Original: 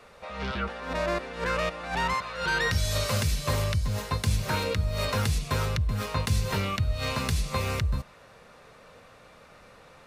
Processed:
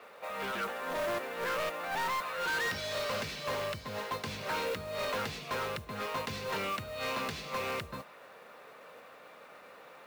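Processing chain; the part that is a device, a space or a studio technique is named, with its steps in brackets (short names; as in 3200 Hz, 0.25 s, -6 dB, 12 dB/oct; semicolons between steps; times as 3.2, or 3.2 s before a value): carbon microphone (BPF 320–3400 Hz; soft clip -30.5 dBFS, distortion -9 dB; modulation noise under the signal 18 dB); gain +1 dB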